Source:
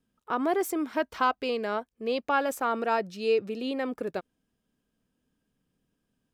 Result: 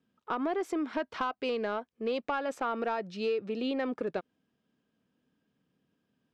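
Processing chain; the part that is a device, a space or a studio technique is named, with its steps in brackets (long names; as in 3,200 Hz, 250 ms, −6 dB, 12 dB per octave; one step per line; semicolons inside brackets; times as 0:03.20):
AM radio (band-pass filter 120–4,400 Hz; downward compressor 6 to 1, threshold −29 dBFS, peak gain reduction 10 dB; soft clipping −22 dBFS, distortion −22 dB)
level +2 dB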